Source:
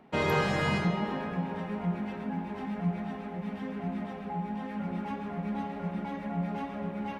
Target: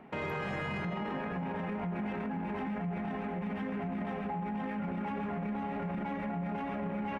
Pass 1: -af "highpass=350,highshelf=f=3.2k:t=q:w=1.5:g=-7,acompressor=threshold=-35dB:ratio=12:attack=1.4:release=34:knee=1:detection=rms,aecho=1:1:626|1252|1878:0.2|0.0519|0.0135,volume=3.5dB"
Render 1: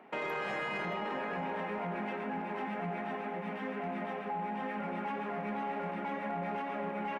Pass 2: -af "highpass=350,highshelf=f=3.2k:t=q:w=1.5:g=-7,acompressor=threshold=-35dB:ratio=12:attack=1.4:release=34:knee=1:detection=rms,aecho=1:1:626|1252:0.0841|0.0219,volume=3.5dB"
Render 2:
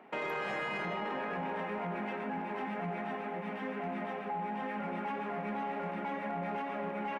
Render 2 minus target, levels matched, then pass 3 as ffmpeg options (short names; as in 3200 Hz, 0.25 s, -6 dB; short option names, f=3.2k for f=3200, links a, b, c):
250 Hz band -4.5 dB
-af "highshelf=f=3.2k:t=q:w=1.5:g=-7,acompressor=threshold=-35dB:ratio=12:attack=1.4:release=34:knee=1:detection=rms,aecho=1:1:626|1252:0.0841|0.0219,volume=3.5dB"